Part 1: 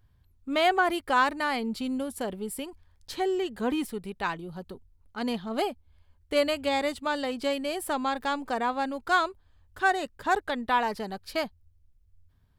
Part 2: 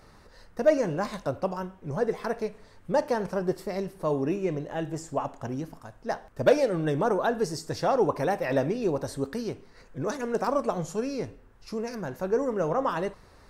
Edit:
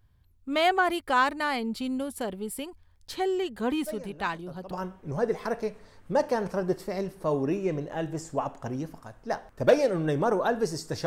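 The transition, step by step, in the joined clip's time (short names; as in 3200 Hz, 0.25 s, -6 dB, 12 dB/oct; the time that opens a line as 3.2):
part 1
3.86 add part 2 from 0.65 s 0.85 s -17 dB
4.71 switch to part 2 from 1.5 s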